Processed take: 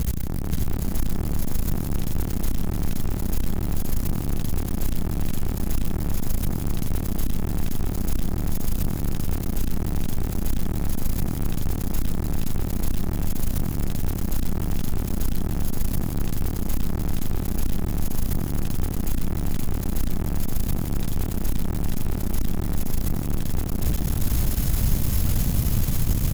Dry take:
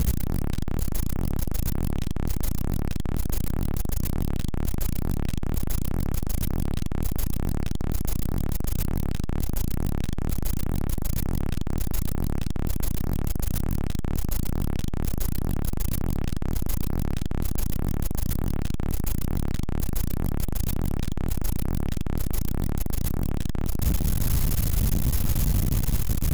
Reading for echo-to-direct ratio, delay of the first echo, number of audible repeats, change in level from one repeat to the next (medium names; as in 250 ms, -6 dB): -0.5 dB, 166 ms, 4, no regular repeats